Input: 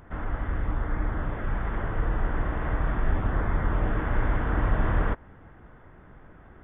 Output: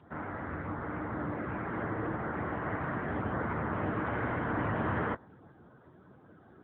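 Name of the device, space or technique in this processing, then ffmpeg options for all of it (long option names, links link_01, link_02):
mobile call with aggressive noise cancelling: -filter_complex "[0:a]asplit=3[link_01][link_02][link_03];[link_01]afade=type=out:start_time=1.17:duration=0.02[link_04];[link_02]equalizer=frequency=310:width_type=o:width=0.46:gain=5.5,afade=type=in:start_time=1.17:duration=0.02,afade=type=out:start_time=2.11:duration=0.02[link_05];[link_03]afade=type=in:start_time=2.11:duration=0.02[link_06];[link_04][link_05][link_06]amix=inputs=3:normalize=0,highpass=frequency=140:poles=1,afftdn=noise_reduction=18:noise_floor=-52" -ar 8000 -c:a libopencore_amrnb -b:a 10200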